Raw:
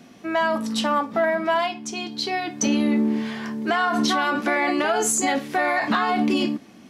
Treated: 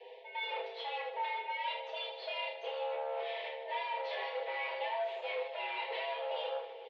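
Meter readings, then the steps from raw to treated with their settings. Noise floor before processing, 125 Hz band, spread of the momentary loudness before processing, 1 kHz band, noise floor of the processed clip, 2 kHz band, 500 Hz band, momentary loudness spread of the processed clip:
-47 dBFS, under -40 dB, 7 LU, -14.0 dB, -49 dBFS, -15.0 dB, -12.5 dB, 3 LU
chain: minimum comb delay 4.6 ms; Chebyshev band-stop 680–1600 Hz, order 2; bell 1200 Hz -15 dB 0.53 oct; comb 7.1 ms, depth 75%; reverse; compressor 16:1, threshold -32 dBFS, peak gain reduction 14.5 dB; reverse; overloaded stage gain 32.5 dB; air absorption 54 m; on a send: reverse bouncing-ball echo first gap 30 ms, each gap 1.6×, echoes 5; on the sum: mistuned SSB +240 Hz 180–3400 Hz; gain -2 dB

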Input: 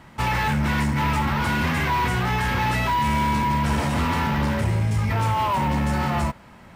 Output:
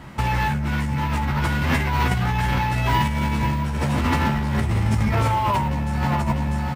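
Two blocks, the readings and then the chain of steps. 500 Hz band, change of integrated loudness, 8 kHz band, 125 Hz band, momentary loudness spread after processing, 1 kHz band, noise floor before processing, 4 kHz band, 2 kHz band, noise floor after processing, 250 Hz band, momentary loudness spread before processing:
0.0 dB, +0.5 dB, -1.5 dB, +2.0 dB, 3 LU, -1.0 dB, -47 dBFS, -1.0 dB, -1.0 dB, -24 dBFS, +0.5 dB, 2 LU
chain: low shelf 320 Hz +4.5 dB; doubler 15 ms -4 dB; on a send: echo 0.647 s -11 dB; on the sum: negative-ratio compressor -21 dBFS, ratio -1

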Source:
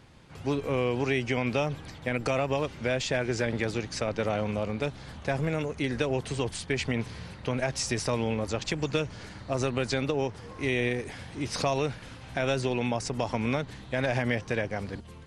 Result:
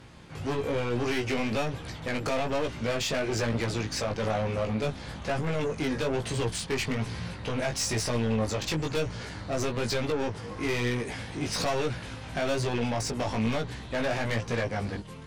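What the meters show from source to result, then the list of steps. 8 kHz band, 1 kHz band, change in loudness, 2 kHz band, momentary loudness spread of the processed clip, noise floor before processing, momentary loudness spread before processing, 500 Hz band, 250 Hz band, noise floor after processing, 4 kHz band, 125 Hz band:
+3.0 dB, +0.5 dB, 0.0 dB, -1.0 dB, 6 LU, -46 dBFS, 7 LU, -0.5 dB, 0.0 dB, -41 dBFS, +2.0 dB, +0.5 dB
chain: added harmonics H 2 -8 dB, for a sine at -14 dBFS; soft clip -29 dBFS, distortion -4 dB; chorus 1.1 Hz, delay 17 ms, depth 2.5 ms; gain +8 dB

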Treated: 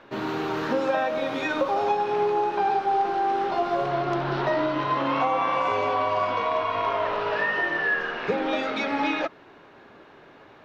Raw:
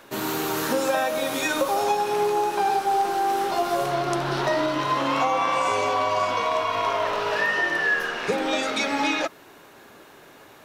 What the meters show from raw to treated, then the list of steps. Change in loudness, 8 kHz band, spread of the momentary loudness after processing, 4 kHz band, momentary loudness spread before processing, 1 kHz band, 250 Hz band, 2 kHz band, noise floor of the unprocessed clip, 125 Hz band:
-1.5 dB, under -15 dB, 3 LU, -6.0 dB, 3 LU, -1.0 dB, -0.5 dB, -2.5 dB, -49 dBFS, 0.0 dB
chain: air absorption 250 m

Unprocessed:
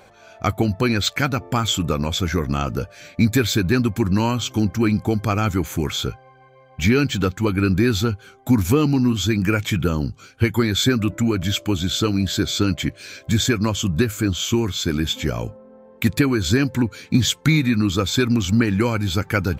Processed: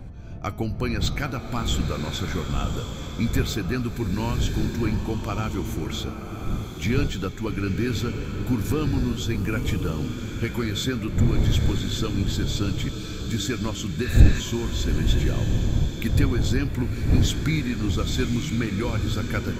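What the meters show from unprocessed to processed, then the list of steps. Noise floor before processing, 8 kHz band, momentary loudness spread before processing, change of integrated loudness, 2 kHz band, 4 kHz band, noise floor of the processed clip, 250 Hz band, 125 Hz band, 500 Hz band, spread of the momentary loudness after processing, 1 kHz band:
-49 dBFS, -7.5 dB, 6 LU, -5.0 dB, -7.0 dB, -7.5 dB, -34 dBFS, -6.5 dB, -2.5 dB, -7.0 dB, 7 LU, -7.0 dB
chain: wind noise 110 Hz -18 dBFS; spectral repair 14.07–14.38, 850–5700 Hz before; de-hum 208.8 Hz, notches 31; in parallel at -10.5 dB: soft clip -1 dBFS, distortion -14 dB; on the sum: bloom reverb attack 1.11 s, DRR 5.5 dB; gain -10.5 dB

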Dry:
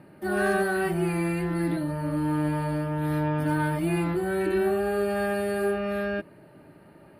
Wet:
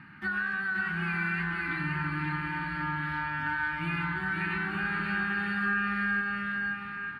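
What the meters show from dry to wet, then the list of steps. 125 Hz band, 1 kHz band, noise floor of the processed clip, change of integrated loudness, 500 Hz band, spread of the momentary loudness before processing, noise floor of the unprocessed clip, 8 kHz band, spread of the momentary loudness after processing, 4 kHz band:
-7.0 dB, -2.0 dB, -39 dBFS, -3.5 dB, -22.0 dB, 4 LU, -52 dBFS, under -20 dB, 4 LU, 0.0 dB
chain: EQ curve 240 Hz 0 dB, 550 Hz -29 dB, 860 Hz -1 dB, 1500 Hz +13 dB, 2900 Hz +7 dB, 6700 Hz -6 dB, 10000 Hz -20 dB; compressor 6:1, threshold -30 dBFS, peak gain reduction 14.5 dB; bouncing-ball echo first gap 0.53 s, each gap 0.7×, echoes 5

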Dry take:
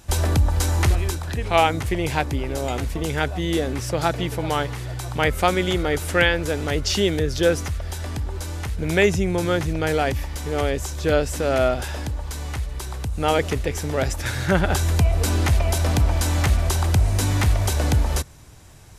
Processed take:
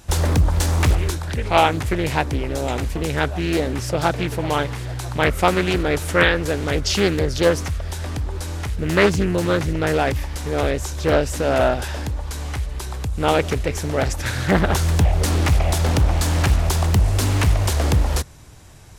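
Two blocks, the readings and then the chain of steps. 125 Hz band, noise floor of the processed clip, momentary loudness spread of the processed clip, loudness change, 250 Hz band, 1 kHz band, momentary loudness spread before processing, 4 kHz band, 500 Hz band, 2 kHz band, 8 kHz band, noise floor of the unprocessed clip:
+2.0 dB, -29 dBFS, 10 LU, +2.0 dB, +2.5 dB, +2.5 dB, 10 LU, +1.5 dB, +2.0 dB, +2.0 dB, +1.0 dB, -31 dBFS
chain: Doppler distortion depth 0.88 ms; gain +2 dB

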